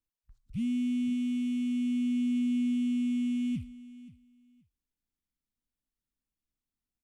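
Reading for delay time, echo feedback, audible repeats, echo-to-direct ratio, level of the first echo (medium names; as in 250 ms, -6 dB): 527 ms, 18%, 2, -18.0 dB, -18.0 dB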